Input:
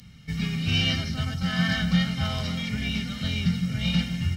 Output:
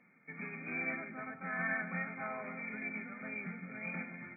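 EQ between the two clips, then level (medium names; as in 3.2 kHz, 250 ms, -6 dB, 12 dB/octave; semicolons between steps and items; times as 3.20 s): high-pass 280 Hz 24 dB/octave; brick-wall FIR low-pass 2.5 kHz; -5.5 dB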